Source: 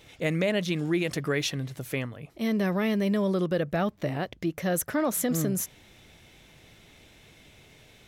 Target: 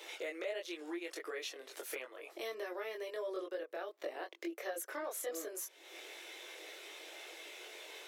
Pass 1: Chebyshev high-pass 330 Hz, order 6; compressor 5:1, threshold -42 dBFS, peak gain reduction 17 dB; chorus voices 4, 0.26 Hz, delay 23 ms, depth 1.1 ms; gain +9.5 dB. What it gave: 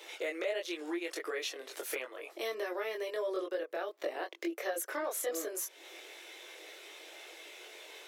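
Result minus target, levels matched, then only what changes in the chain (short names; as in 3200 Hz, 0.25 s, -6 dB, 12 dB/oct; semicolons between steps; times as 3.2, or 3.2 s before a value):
compressor: peak gain reduction -5 dB
change: compressor 5:1, threshold -48.5 dBFS, peak gain reduction 22 dB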